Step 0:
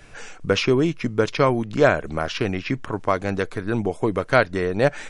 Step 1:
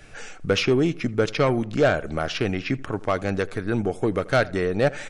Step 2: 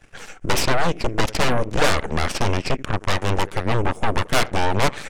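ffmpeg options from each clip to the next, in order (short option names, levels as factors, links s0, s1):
-filter_complex "[0:a]asoftclip=type=tanh:threshold=0.299,bandreject=f=1000:w=7.1,asplit=2[s0][s1];[s1]adelay=82,lowpass=f=2000:p=1,volume=0.0944,asplit=2[s2][s3];[s3]adelay=82,lowpass=f=2000:p=1,volume=0.44,asplit=2[s4][s5];[s5]adelay=82,lowpass=f=2000:p=1,volume=0.44[s6];[s0][s2][s4][s6]amix=inputs=4:normalize=0"
-af "equalizer=f=4100:t=o:w=0.4:g=-10.5,aeval=exprs='0.335*(cos(1*acos(clip(val(0)/0.335,-1,1)))-cos(1*PI/2))+0.133*(cos(3*acos(clip(val(0)/0.335,-1,1)))-cos(3*PI/2))+0.0944*(cos(8*acos(clip(val(0)/0.335,-1,1)))-cos(8*PI/2))':c=same,asoftclip=type=tanh:threshold=0.211,volume=1.78"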